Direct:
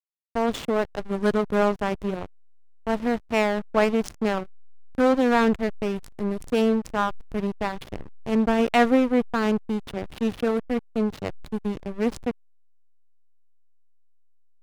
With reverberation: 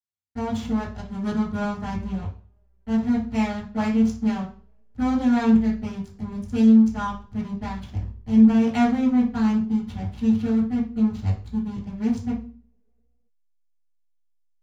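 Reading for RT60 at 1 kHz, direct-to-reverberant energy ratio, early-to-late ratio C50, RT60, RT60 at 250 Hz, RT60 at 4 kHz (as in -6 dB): 0.40 s, -11.5 dB, 6.5 dB, 0.40 s, 0.55 s, 0.40 s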